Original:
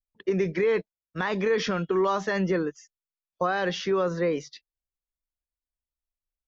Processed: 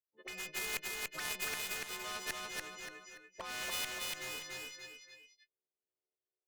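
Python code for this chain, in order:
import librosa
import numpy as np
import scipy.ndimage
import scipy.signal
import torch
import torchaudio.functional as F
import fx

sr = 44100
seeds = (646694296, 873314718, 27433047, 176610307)

p1 = fx.freq_snap(x, sr, grid_st=3)
p2 = fx.low_shelf(p1, sr, hz=170.0, db=-4.0)
p3 = fx.auto_wah(p2, sr, base_hz=400.0, top_hz=2500.0, q=5.0, full_db=-28.5, direction='up')
p4 = 10.0 ** (-40.0 / 20.0) * (np.abs((p3 / 10.0 ** (-40.0 / 20.0) + 3.0) % 4.0 - 2.0) - 1.0)
p5 = p3 + (p4 * 10.0 ** (-3.0 / 20.0))
p6 = fx.tremolo_shape(p5, sr, shape='saw_up', hz=1.3, depth_pct=80)
p7 = fx.cheby_harmonics(p6, sr, harmonics=(2, 7), levels_db=(-17, -24), full_scale_db=-25.5)
p8 = p7 + fx.echo_feedback(p7, sr, ms=289, feedback_pct=25, wet_db=-4, dry=0)
p9 = fx.spectral_comp(p8, sr, ratio=2.0)
y = p9 * 10.0 ** (3.5 / 20.0)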